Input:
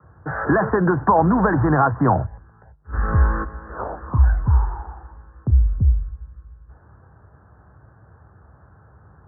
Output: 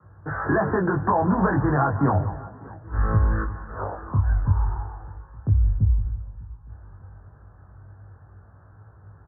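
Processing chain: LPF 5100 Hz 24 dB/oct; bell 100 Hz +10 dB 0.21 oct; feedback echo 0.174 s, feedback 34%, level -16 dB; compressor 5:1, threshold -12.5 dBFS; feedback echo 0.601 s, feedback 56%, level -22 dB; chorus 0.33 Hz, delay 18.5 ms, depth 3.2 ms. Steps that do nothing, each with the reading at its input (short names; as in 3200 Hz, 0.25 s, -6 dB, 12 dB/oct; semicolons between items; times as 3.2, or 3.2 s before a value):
LPF 5100 Hz: input band ends at 1100 Hz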